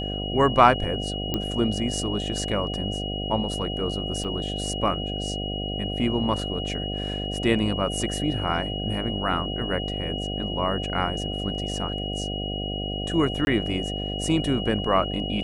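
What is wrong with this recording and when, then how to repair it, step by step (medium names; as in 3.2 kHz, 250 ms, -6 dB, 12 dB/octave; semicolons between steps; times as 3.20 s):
buzz 50 Hz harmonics 15 -31 dBFS
whine 2.9 kHz -32 dBFS
1.34 s: pop -11 dBFS
4.24–4.25 s: dropout 6.2 ms
13.45–13.47 s: dropout 21 ms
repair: de-click; band-stop 2.9 kHz, Q 30; de-hum 50 Hz, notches 15; interpolate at 4.24 s, 6.2 ms; interpolate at 13.45 s, 21 ms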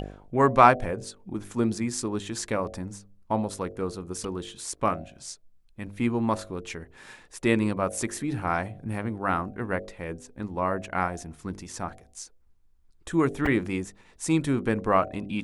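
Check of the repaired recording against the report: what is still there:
nothing left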